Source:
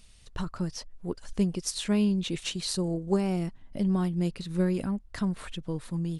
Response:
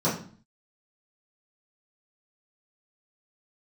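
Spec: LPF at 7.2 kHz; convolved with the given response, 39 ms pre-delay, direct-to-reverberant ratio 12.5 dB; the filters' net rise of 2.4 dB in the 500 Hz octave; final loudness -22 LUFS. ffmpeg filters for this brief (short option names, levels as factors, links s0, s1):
-filter_complex "[0:a]lowpass=7200,equalizer=f=500:t=o:g=3.5,asplit=2[s0][s1];[1:a]atrim=start_sample=2205,adelay=39[s2];[s1][s2]afir=irnorm=-1:irlink=0,volume=0.0531[s3];[s0][s3]amix=inputs=2:normalize=0,volume=2.11"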